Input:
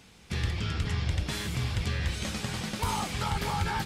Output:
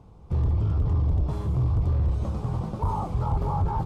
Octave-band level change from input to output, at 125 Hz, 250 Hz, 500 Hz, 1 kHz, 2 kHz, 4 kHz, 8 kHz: +7.5 dB, +2.5 dB, +3.5 dB, +1.5 dB, under -15 dB, under -20 dB, under -15 dB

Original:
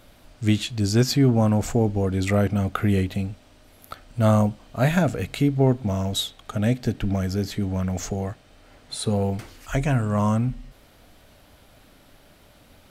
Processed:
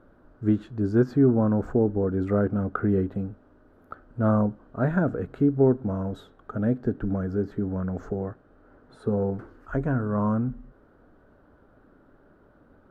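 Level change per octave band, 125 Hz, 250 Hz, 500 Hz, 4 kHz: -5.5 dB, -1.0 dB, 0.0 dB, under -25 dB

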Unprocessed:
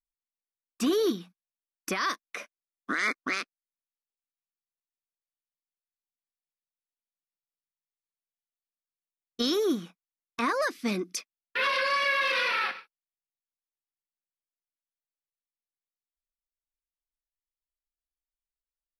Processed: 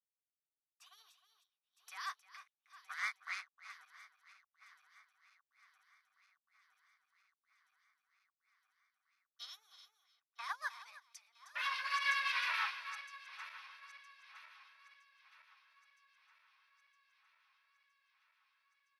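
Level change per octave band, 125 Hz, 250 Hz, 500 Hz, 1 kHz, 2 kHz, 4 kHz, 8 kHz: under -40 dB, under -40 dB, -37.0 dB, -10.5 dB, -9.5 dB, -11.0 dB, -15.0 dB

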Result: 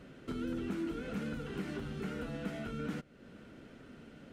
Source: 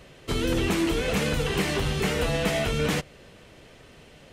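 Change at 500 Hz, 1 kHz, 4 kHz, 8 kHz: -15.5 dB, -15.5 dB, -22.5 dB, -24.5 dB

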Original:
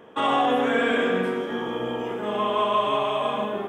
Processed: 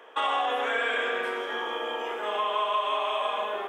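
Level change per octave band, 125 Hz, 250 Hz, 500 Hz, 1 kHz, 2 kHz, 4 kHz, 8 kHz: under -25 dB, -17.5 dB, -6.5 dB, -3.0 dB, -0.5 dB, -0.5 dB, no reading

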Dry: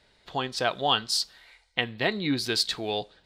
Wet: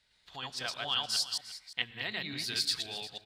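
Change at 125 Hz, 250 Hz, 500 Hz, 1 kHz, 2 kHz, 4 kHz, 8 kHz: -12.0 dB, -16.0 dB, -16.5 dB, -12.5 dB, -6.5 dB, -4.0 dB, -3.0 dB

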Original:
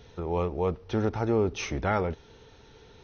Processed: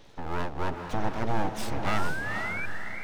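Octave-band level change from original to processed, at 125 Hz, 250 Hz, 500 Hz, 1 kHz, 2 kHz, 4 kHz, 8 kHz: -3.5 dB, -3.5 dB, -7.5 dB, +2.0 dB, +7.5 dB, +1.5 dB, no reading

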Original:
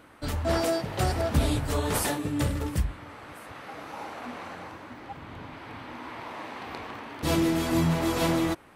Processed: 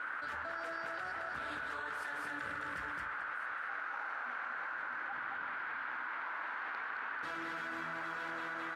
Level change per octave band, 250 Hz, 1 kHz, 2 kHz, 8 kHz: -24.0 dB, -5.5 dB, +1.5 dB, under -25 dB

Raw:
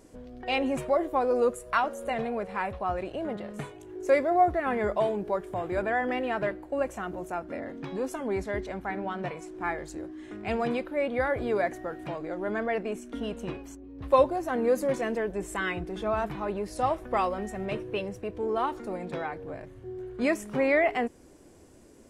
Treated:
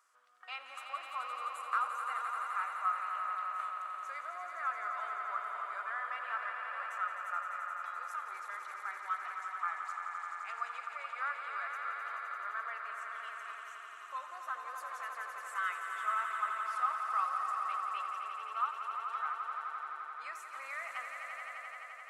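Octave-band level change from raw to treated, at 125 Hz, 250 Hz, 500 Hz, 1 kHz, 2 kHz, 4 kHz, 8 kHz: under -40 dB, under -40 dB, -28.0 dB, -4.0 dB, -5.0 dB, -9.0 dB, -9.0 dB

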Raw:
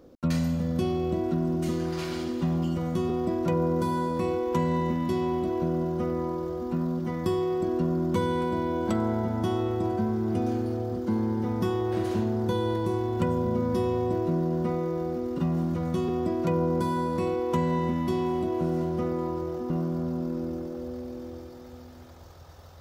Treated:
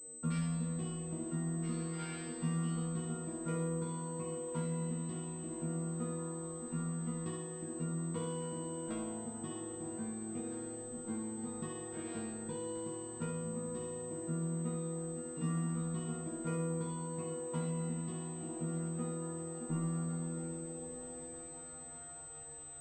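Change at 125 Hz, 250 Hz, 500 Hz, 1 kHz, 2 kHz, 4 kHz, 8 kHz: -9.0 dB, -12.0 dB, -15.0 dB, -16.5 dB, -11.5 dB, -12.0 dB, no reading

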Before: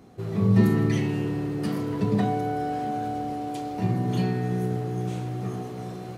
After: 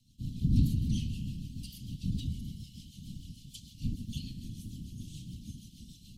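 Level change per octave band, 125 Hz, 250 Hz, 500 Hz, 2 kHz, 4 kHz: -8.0 dB, -12.5 dB, under -30 dB, -24.0 dB, -3.5 dB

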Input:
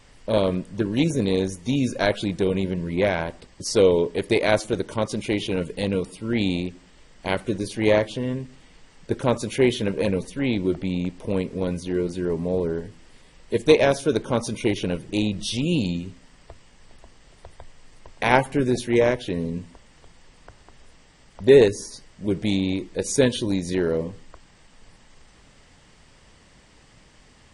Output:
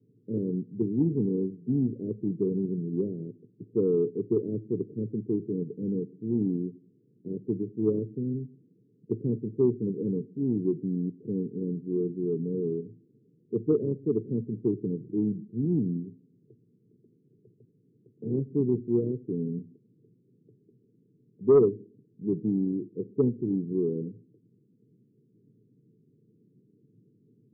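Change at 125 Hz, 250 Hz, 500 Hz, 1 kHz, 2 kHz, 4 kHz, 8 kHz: -4.0 dB, -3.5 dB, -7.0 dB, under -20 dB, under -40 dB, under -40 dB, under -40 dB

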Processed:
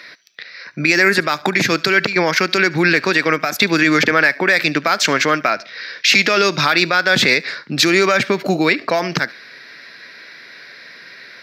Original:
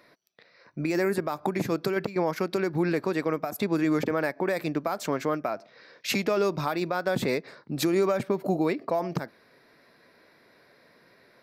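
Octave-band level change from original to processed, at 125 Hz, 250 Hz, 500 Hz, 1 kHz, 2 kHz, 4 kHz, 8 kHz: +7.5 dB, +8.0 dB, +7.5 dB, +12.0 dB, +21.0 dB, +21.0 dB, +16.0 dB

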